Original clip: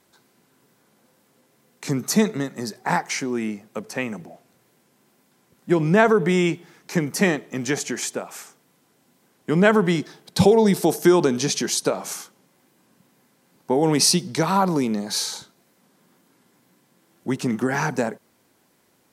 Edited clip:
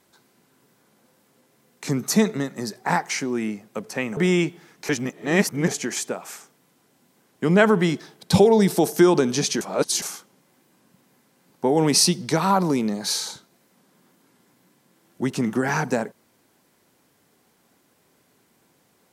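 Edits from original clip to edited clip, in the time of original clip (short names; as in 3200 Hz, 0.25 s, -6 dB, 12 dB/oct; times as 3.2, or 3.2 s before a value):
4.17–6.23 cut
6.95–7.74 reverse
11.67–12.08 reverse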